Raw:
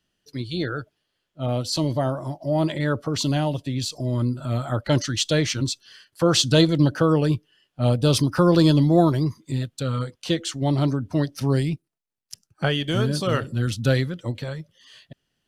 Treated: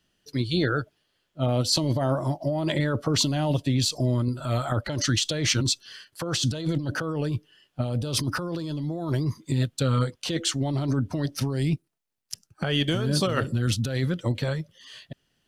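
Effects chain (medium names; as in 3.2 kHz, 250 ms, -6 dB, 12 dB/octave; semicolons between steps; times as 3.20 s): 4.28–4.72 s: peaking EQ 190 Hz -8.5 dB 1.8 oct; compressor with a negative ratio -25 dBFS, ratio -1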